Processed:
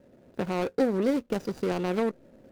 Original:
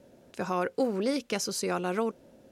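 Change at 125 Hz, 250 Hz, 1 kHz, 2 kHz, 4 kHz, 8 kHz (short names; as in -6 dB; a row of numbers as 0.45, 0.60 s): +4.0, +4.0, -2.0, -1.5, -6.0, -13.5 dB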